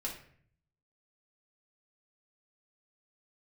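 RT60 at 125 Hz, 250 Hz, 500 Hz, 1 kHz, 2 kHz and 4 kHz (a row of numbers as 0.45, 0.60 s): 1.0, 0.80, 0.60, 0.50, 0.60, 0.40 s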